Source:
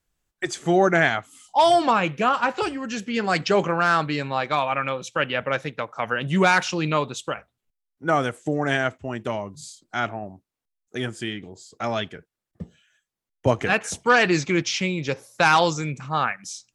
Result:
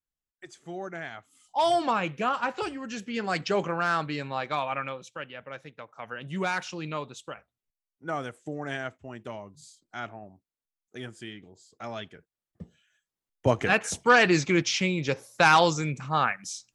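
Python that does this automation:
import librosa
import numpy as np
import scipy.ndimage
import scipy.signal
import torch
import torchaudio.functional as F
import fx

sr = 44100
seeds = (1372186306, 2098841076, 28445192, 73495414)

y = fx.gain(x, sr, db=fx.line((1.05, -19.0), (1.65, -6.5), (4.79, -6.5), (5.33, -17.0), (6.47, -11.0), (11.94, -11.0), (13.78, -1.5)))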